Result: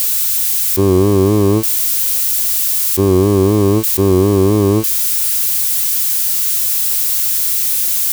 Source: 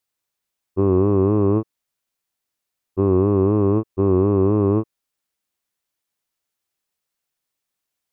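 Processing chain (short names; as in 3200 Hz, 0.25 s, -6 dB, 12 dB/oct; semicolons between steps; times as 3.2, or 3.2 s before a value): switching spikes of -17 dBFS; hum 50 Hz, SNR 31 dB; gain +5.5 dB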